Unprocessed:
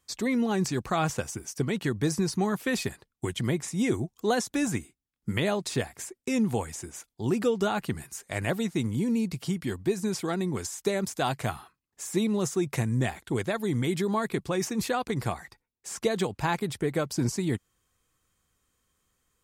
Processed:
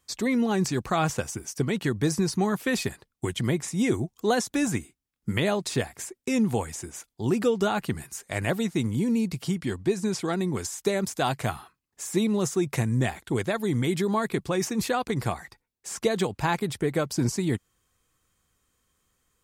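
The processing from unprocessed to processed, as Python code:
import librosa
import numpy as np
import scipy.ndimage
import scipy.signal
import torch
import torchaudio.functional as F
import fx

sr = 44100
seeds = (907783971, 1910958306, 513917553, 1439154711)

y = fx.lowpass(x, sr, hz=10000.0, slope=12, at=(9.55, 10.32))
y = F.gain(torch.from_numpy(y), 2.0).numpy()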